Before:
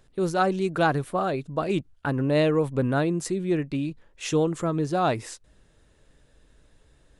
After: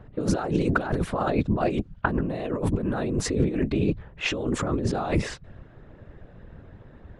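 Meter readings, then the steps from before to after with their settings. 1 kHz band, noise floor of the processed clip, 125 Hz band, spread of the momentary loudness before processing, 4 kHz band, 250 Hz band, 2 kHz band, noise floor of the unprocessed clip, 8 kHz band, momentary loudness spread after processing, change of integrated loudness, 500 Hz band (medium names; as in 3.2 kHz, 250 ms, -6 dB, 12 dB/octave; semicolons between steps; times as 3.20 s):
-3.5 dB, -50 dBFS, +1.0 dB, 8 LU, +1.0 dB, +0.5 dB, -0.5 dB, -61 dBFS, +1.0 dB, 4 LU, -1.0 dB, -3.0 dB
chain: level-controlled noise filter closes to 1.7 kHz, open at -19 dBFS; treble shelf 3.2 kHz -6.5 dB; whisper effect; compressor with a negative ratio -32 dBFS, ratio -1; trim +6.5 dB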